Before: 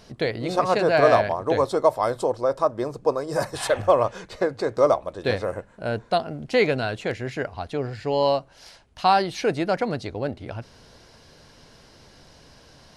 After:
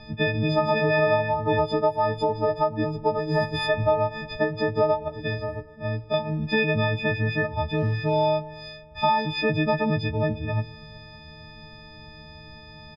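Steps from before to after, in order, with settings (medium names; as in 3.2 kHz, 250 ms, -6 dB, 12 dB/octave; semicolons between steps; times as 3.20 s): partials quantised in pitch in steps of 6 st; bass shelf 290 Hz +9.5 dB; band-stop 7.2 kHz, Q 5.5; comb 1.2 ms, depth 35%; compression 4:1, threshold -18 dBFS, peak gain reduction 10.5 dB; 5.08–6.14 s: feedback comb 60 Hz, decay 0.17 s, harmonics all, mix 80%; 7.71–8.26 s: modulation noise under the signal 28 dB; distance through air 240 m; feedback echo behind a low-pass 116 ms, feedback 68%, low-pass 1.5 kHz, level -20 dB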